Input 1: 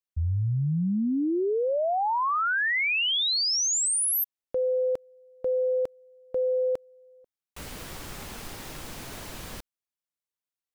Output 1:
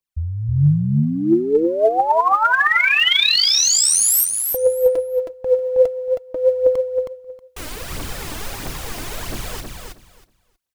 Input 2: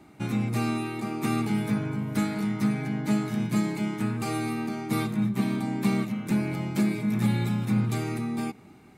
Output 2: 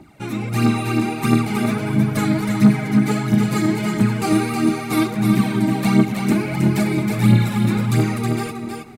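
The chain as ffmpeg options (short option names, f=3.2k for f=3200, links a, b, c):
-af "aphaser=in_gain=1:out_gain=1:delay=3.4:decay=0.63:speed=1.5:type=triangular,aecho=1:1:318|636|954:0.562|0.101|0.0182,dynaudnorm=f=210:g=5:m=4dB,volume=2.5dB"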